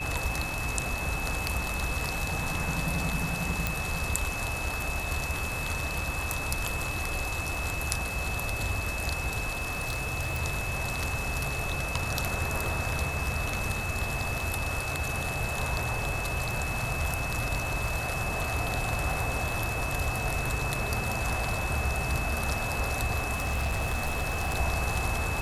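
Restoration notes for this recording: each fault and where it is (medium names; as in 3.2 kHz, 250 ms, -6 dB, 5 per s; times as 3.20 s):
crackle 14 per s -36 dBFS
whine 2.6 kHz -34 dBFS
3.67 s: pop
9.58–10.39 s: clipped -25 dBFS
23.33–24.57 s: clipped -24.5 dBFS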